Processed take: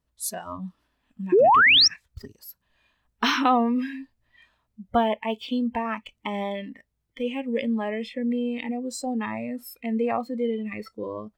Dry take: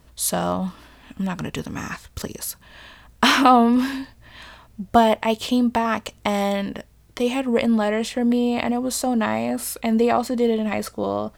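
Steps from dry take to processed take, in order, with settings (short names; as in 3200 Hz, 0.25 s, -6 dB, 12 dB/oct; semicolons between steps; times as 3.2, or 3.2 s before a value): painted sound rise, 1.32–1.88, 330–5900 Hz -9 dBFS; spectral noise reduction 18 dB; gain -6.5 dB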